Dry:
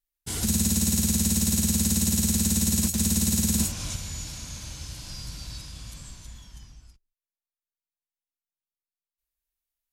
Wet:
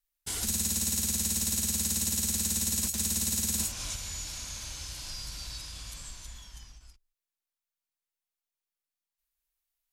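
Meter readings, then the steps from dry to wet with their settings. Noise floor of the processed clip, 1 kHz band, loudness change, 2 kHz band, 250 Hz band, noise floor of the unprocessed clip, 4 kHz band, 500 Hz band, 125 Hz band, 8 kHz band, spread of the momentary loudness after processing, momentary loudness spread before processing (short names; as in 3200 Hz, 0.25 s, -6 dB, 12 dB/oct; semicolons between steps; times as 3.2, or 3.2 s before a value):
under -85 dBFS, -3.5 dB, -5.5 dB, -2.5 dB, -13.0 dB, under -85 dBFS, -2.5 dB, -7.5 dB, -11.5 dB, -3.0 dB, 14 LU, 16 LU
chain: bell 150 Hz -11.5 dB 2.7 oct; in parallel at +2.5 dB: compressor, threshold -39 dBFS, peak gain reduction 15 dB; on the sum: ending taper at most 330 dB/s; gain -5 dB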